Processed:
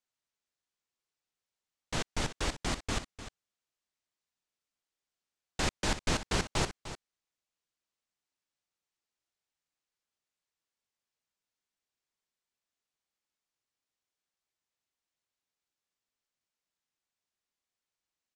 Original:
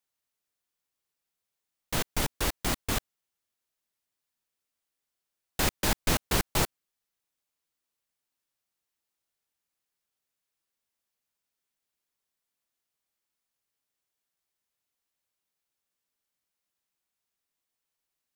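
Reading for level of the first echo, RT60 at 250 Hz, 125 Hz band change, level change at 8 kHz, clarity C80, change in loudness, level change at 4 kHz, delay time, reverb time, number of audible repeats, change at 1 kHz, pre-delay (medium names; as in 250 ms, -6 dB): -12.5 dB, no reverb, -3.0 dB, -5.5 dB, no reverb, -4.5 dB, -3.5 dB, 301 ms, no reverb, 1, -3.5 dB, no reverb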